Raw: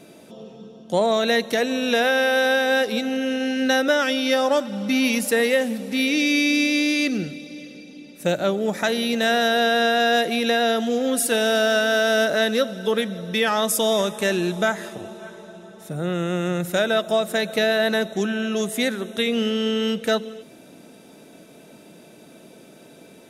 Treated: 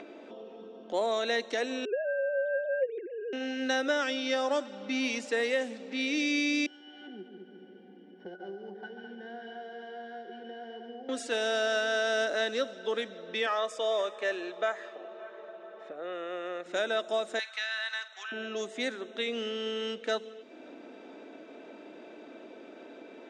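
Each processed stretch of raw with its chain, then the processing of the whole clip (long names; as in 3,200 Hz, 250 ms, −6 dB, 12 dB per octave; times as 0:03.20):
0:01.85–0:03.33: three sine waves on the formant tracks + low-pass filter 1,000 Hz
0:06.66–0:11.09: samples sorted by size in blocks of 8 samples + resonances in every octave F#, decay 0.12 s + echo machine with several playback heads 70 ms, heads second and third, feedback 45%, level −8 dB
0:13.46–0:16.66: bass and treble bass −13 dB, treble −11 dB + comb filter 1.7 ms, depth 41%
0:17.39–0:18.32: high-pass filter 1,100 Hz 24 dB per octave + double-tracking delay 49 ms −14 dB + multiband upward and downward compressor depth 40%
whole clip: elliptic band-pass filter 280–7,800 Hz, stop band 40 dB; low-pass that shuts in the quiet parts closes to 2,400 Hz, open at −17 dBFS; upward compression, threshold −29 dBFS; level −8.5 dB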